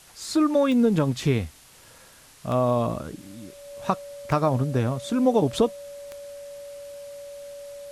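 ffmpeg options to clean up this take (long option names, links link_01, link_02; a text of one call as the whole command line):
ffmpeg -i in.wav -af "adeclick=threshold=4,bandreject=frequency=570:width=30,afftdn=noise_reduction=18:noise_floor=-51" out.wav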